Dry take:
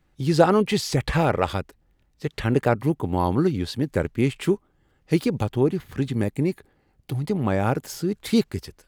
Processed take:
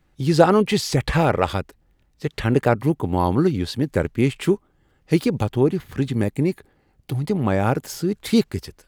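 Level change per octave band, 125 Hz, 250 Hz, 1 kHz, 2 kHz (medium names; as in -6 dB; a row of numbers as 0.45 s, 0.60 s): +2.5 dB, +2.5 dB, +2.5 dB, +2.5 dB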